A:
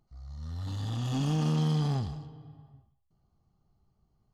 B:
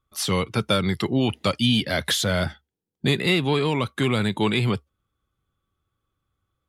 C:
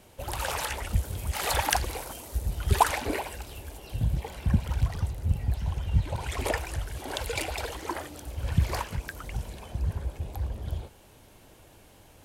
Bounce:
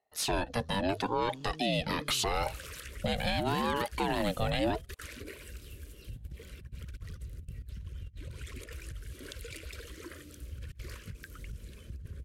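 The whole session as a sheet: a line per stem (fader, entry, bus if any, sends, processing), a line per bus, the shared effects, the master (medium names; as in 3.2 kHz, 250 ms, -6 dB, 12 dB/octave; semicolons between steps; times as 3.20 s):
-13.5 dB, 0.20 s, bus A, no send, high-order bell 510 Hz +10.5 dB; compression, threshold -31 dBFS, peak gain reduction 10 dB
-3.0 dB, 0.00 s, no bus, no send, ring modulator with a swept carrier 530 Hz, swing 35%, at 0.79 Hz
-10.0 dB, 2.15 s, bus A, no send, compressor with a negative ratio -30 dBFS, ratio -0.5
bus A: 0.0 dB, Butterworth band-stop 810 Hz, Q 1; compression, threshold -41 dBFS, peak gain reduction 6.5 dB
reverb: none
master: bass shelf 140 Hz +4 dB; peak limiter -20 dBFS, peak gain reduction 8.5 dB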